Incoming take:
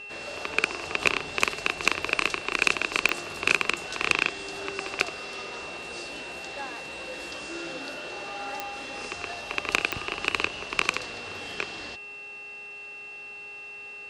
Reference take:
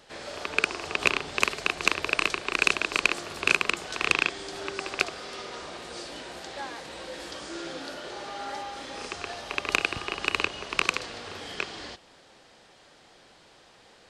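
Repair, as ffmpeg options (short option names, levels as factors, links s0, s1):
-af "adeclick=t=4,bandreject=f=409.8:t=h:w=4,bandreject=f=819.6:t=h:w=4,bandreject=f=1229.4:t=h:w=4,bandreject=f=1639.2:t=h:w=4,bandreject=f=2049:t=h:w=4,bandreject=f=2458.8:t=h:w=4,bandreject=f=2700:w=30"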